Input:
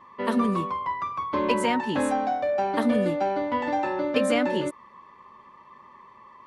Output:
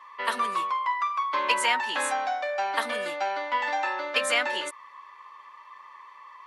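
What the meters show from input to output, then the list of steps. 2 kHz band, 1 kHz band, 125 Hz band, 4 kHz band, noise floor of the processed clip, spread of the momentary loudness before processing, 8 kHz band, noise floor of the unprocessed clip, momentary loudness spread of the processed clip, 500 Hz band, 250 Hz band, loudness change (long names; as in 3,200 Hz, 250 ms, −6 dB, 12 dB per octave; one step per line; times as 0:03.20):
+6.0 dB, +0.5 dB, below −25 dB, +6.5 dB, −49 dBFS, 6 LU, +6.5 dB, −52 dBFS, 7 LU, −7.0 dB, −20.0 dB, −1.5 dB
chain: high-pass filter 1,200 Hz 12 dB per octave
level +6.5 dB
Opus 192 kbit/s 48,000 Hz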